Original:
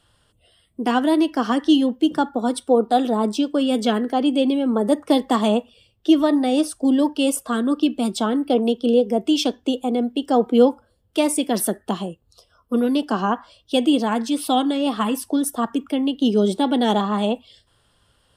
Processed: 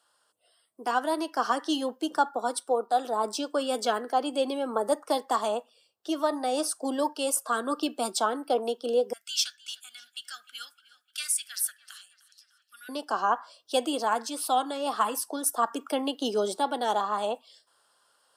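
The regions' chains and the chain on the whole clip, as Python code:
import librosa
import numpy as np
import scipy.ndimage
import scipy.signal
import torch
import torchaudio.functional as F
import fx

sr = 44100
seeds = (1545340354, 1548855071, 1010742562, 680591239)

y = fx.chain(x, sr, fx.ellip_highpass(hz=1500.0, order=4, stop_db=40),
    fx.echo_tape(ms=303, feedback_pct=63, wet_db=-18, lp_hz=5800.0, drive_db=18.0, wow_cents=29),
    fx.clip_hard(threshold_db=-14.5), at=(9.13, 12.89))
y = scipy.signal.sosfilt(scipy.signal.butter(2, 700.0, 'highpass', fs=sr, output='sos'), y)
y = fx.band_shelf(y, sr, hz=2600.0, db=-8.5, octaves=1.2)
y = fx.rider(y, sr, range_db=10, speed_s=0.5)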